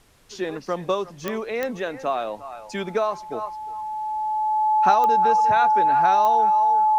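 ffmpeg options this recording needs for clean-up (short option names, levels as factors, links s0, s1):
-af "adeclick=t=4,bandreject=f=860:w=30,agate=range=0.0891:threshold=0.0251"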